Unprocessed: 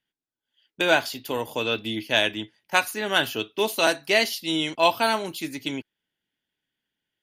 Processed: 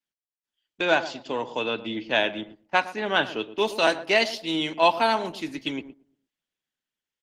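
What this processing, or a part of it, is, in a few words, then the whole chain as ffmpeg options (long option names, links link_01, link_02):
video call: -filter_complex "[0:a]asplit=3[link_01][link_02][link_03];[link_01]afade=type=out:start_time=1.63:duration=0.02[link_04];[link_02]aemphasis=mode=reproduction:type=50fm,afade=type=in:start_time=1.63:duration=0.02,afade=type=out:start_time=3.46:duration=0.02[link_05];[link_03]afade=type=in:start_time=3.46:duration=0.02[link_06];[link_04][link_05][link_06]amix=inputs=3:normalize=0,lowpass=6200,adynamicequalizer=threshold=0.0141:dfrequency=900:dqfactor=2.1:tfrequency=900:tqfactor=2.1:attack=5:release=100:ratio=0.375:range=1.5:mode=boostabove:tftype=bell,highpass=frequency=140:width=0.5412,highpass=frequency=140:width=1.3066,asplit=2[link_07][link_08];[link_08]adelay=115,lowpass=frequency=900:poles=1,volume=-12dB,asplit=2[link_09][link_10];[link_10]adelay=115,lowpass=frequency=900:poles=1,volume=0.38,asplit=2[link_11][link_12];[link_12]adelay=115,lowpass=frequency=900:poles=1,volume=0.38,asplit=2[link_13][link_14];[link_14]adelay=115,lowpass=frequency=900:poles=1,volume=0.38[link_15];[link_07][link_09][link_11][link_13][link_15]amix=inputs=5:normalize=0,dynaudnorm=framelen=230:gausssize=7:maxgain=4dB,agate=range=-9dB:threshold=-39dB:ratio=16:detection=peak,volume=-3dB" -ar 48000 -c:a libopus -b:a 16k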